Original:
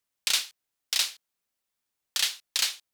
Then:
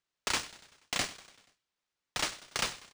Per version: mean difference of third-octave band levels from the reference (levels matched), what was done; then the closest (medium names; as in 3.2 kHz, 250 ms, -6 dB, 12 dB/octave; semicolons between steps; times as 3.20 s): 12.0 dB: self-modulated delay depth 0.9 ms; high-pass 1 kHz 24 dB/octave; on a send: feedback delay 96 ms, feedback 58%, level -18 dB; on the sum: decimation joined by straight lines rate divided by 3×; trim -3.5 dB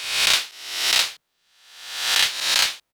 5.5 dB: reverse spectral sustain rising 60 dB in 0.87 s; treble shelf 3.1 kHz -12 dB; in parallel at 0 dB: compression, threshold -29 dBFS, peak gain reduction 5.5 dB; on the sum: bands offset in time highs, lows 30 ms, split 210 Hz; trim +7 dB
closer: second